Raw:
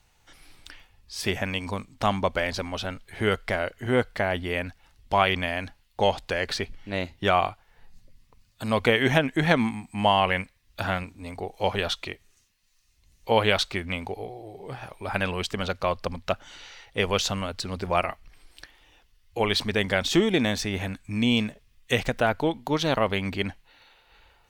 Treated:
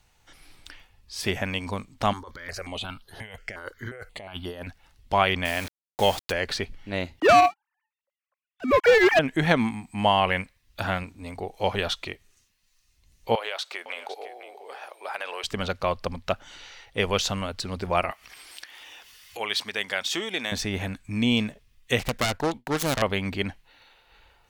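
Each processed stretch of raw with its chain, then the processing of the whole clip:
2.13–4.67 low shelf 470 Hz -7.5 dB + negative-ratio compressor -34 dBFS + step phaser 5.6 Hz 660–7700 Hz
5.45–6.32 high shelf 3300 Hz +8 dB + requantised 6-bit, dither none
7.2–9.19 sine-wave speech + sample leveller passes 3 + upward expander, over -31 dBFS
13.35–15.44 HPF 480 Hz 24 dB/oct + compressor 4:1, threshold -28 dBFS + echo 0.507 s -13 dB
18.11–20.52 HPF 1300 Hz 6 dB/oct + notch 4100 Hz, Q 23 + upward compressor, threshold -31 dBFS
21.99–23.02 self-modulated delay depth 0.74 ms + expander -37 dBFS
whole clip: dry

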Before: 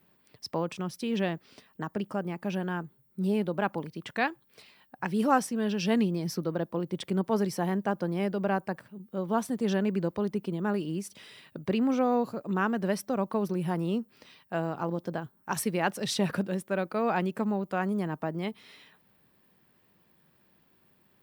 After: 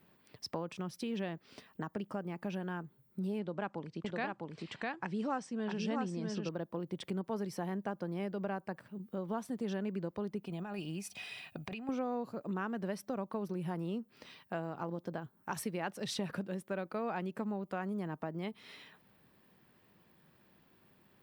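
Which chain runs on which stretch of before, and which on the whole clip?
3.39–6.49 steep low-pass 8300 Hz 48 dB/oct + echo 0.654 s -3.5 dB
10.46–11.89 bell 400 Hz -9 dB 2.8 oct + negative-ratio compressor -37 dBFS, ratio -0.5 + small resonant body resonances 730/2500 Hz, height 16 dB, ringing for 40 ms
whole clip: high shelf 5800 Hz -4.5 dB; compressor 2.5:1, threshold -40 dBFS; gain +1 dB

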